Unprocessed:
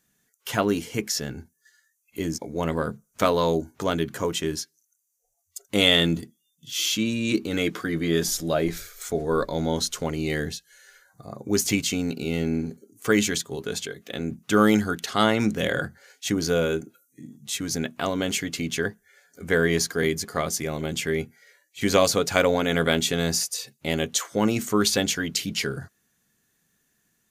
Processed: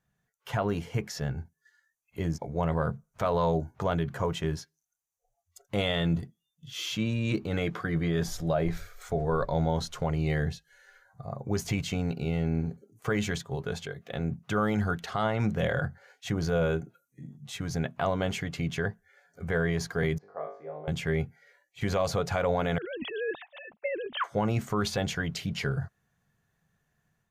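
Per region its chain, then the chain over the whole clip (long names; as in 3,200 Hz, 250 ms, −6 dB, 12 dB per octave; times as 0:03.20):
0:20.18–0:20.88: four-pole ladder band-pass 590 Hz, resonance 30% + flutter between parallel walls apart 3.4 metres, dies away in 0.44 s
0:22.78–0:24.24: three sine waves on the formant tracks + compressor whose output falls as the input rises −30 dBFS
whole clip: drawn EQ curve 150 Hz 0 dB, 270 Hz −15 dB, 720 Hz −2 dB, 8,800 Hz −21 dB; brickwall limiter −22.5 dBFS; automatic gain control gain up to 4 dB; level +1 dB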